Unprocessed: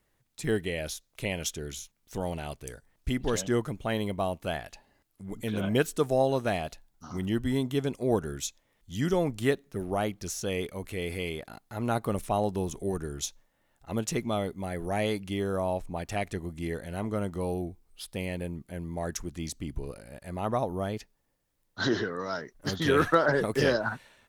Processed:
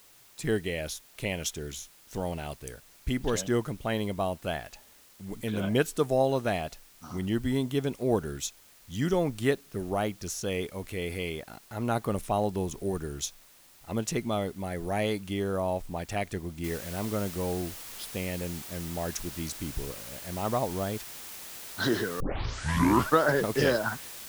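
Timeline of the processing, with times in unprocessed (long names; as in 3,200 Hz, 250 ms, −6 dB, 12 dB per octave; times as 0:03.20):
0:16.64: noise floor change −57 dB −43 dB
0:22.20: tape start 1.00 s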